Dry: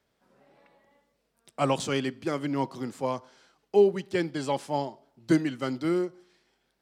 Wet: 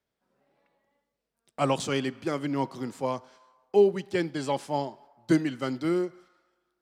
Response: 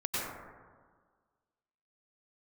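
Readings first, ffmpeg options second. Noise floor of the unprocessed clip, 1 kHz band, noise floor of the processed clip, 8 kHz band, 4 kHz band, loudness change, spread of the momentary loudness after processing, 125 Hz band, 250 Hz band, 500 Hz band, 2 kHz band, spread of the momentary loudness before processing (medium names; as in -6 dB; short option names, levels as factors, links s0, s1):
-75 dBFS, 0.0 dB, -84 dBFS, 0.0 dB, 0.0 dB, 0.0 dB, 10 LU, 0.0 dB, 0.0 dB, 0.0 dB, 0.0 dB, 10 LU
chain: -filter_complex "[0:a]agate=range=0.316:threshold=0.00224:ratio=16:detection=peak,asplit=2[s0][s1];[s1]highpass=1000[s2];[1:a]atrim=start_sample=2205,lowpass=5500,adelay=102[s3];[s2][s3]afir=irnorm=-1:irlink=0,volume=0.0376[s4];[s0][s4]amix=inputs=2:normalize=0"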